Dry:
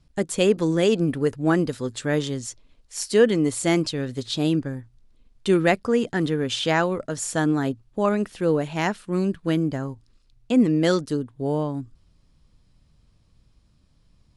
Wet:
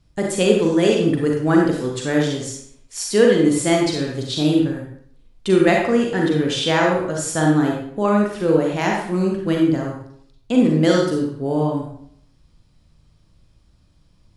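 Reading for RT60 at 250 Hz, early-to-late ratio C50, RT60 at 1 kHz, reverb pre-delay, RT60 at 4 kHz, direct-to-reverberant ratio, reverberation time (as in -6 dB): 0.65 s, 1.5 dB, 0.65 s, 35 ms, 0.50 s, -1.0 dB, 0.65 s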